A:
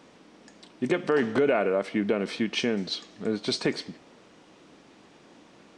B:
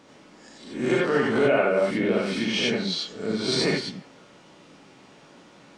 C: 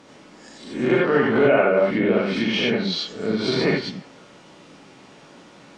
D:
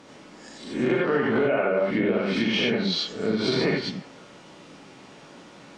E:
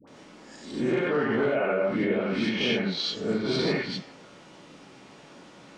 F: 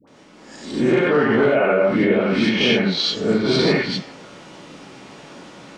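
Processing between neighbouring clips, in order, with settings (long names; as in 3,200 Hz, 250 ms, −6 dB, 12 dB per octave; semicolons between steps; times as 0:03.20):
peak hold with a rise ahead of every peak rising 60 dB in 0.54 s; reverb whose tail is shaped and stops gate 110 ms rising, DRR −3 dB; level −2.5 dB
treble cut that deepens with the level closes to 2,900 Hz, closed at −20.5 dBFS; level +4 dB
downward compressor, threshold −19 dBFS, peak gain reduction 7 dB
all-pass dispersion highs, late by 76 ms, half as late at 800 Hz; level −2.5 dB
automatic gain control gain up to 9 dB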